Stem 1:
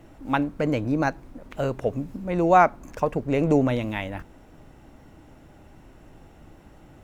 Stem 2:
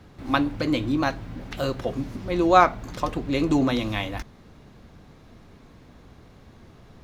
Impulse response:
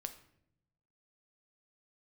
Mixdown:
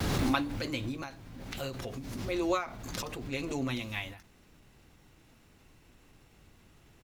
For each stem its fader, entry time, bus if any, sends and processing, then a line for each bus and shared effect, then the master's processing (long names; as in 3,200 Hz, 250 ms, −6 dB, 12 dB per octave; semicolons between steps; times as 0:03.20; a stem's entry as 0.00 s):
−12.0 dB, 0.00 s, no send, graphic EQ with 15 bands 250 Hz −5 dB, 630 Hz −10 dB, 2,500 Hz +7 dB
−4.0 dB, 3.2 ms, polarity flipped, no send, background raised ahead of every attack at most 27 dB per second; automatic ducking −11 dB, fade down 0.95 s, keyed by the first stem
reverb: not used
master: high-shelf EQ 3,900 Hz +11.5 dB; every ending faded ahead of time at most 120 dB per second